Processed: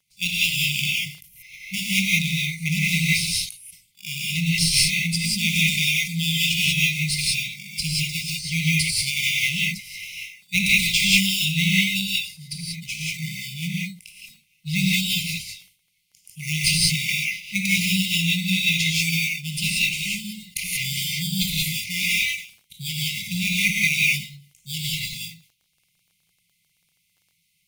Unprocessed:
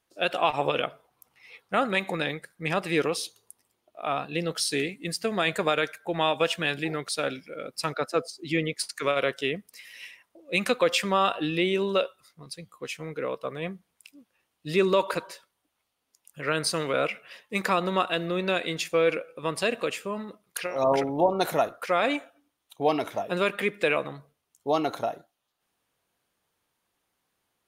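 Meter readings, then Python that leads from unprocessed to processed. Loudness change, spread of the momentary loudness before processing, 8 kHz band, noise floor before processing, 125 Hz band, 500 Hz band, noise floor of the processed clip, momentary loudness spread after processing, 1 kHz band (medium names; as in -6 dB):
+6.0 dB, 13 LU, +13.5 dB, -79 dBFS, +11.5 dB, under -40 dB, -69 dBFS, 13 LU, under -40 dB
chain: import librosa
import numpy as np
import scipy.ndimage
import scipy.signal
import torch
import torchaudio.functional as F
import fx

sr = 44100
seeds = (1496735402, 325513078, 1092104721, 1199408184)

p1 = scipy.signal.sosfilt(scipy.signal.butter(4, 140.0, 'highpass', fs=sr, output='sos'), x)
p2 = fx.sample_hold(p1, sr, seeds[0], rate_hz=4100.0, jitter_pct=0)
p3 = p1 + (p2 * librosa.db_to_amplitude(-4.5))
p4 = fx.brickwall_bandstop(p3, sr, low_hz=200.0, high_hz=2000.0)
p5 = fx.rev_gated(p4, sr, seeds[1], gate_ms=210, shape='rising', drr_db=-5.0)
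p6 = fx.dmg_crackle(p5, sr, seeds[2], per_s=15.0, level_db=-54.0)
p7 = fx.sustainer(p6, sr, db_per_s=130.0)
y = p7 * librosa.db_to_amplitude(5.0)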